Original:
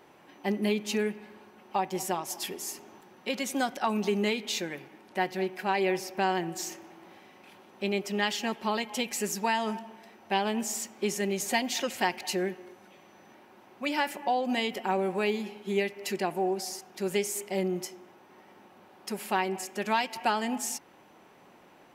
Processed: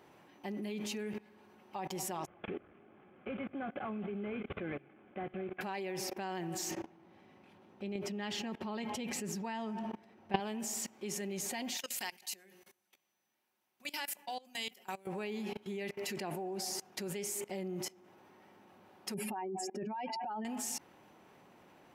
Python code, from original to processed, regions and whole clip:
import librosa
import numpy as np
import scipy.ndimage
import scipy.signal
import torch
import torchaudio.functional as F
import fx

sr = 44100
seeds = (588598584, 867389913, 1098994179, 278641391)

y = fx.chain(x, sr, fx.cvsd(bps=16000),
    fx.air_absorb(metres=300.0),
    fx.notch_comb(f0_hz=940.0), at=(2.26, 5.61))
y = fx.chain(y, sr, fx.lowpass(hz=4000.0, slope=6),
    fx.low_shelf(hz=360.0, db=7.5), at=(6.71, 10.4))
y = fx.chain(y, sr, fx.pre_emphasis(coefficient=0.9),
    fx.hum_notches(base_hz=60, count=9), at=(11.77, 15.07))
y = fx.chain(y, sr, fx.spec_expand(power=2.4),
    fx.peak_eq(hz=5300.0, db=5.5, octaves=0.21),
    fx.over_compress(threshold_db=-34.0, ratio=-1.0), at=(19.14, 20.45))
y = scipy.signal.sosfilt(scipy.signal.butter(2, 66.0, 'highpass', fs=sr, output='sos'), y)
y = fx.low_shelf(y, sr, hz=110.0, db=10.5)
y = fx.level_steps(y, sr, step_db=22)
y = F.gain(torch.from_numpy(y), 5.0).numpy()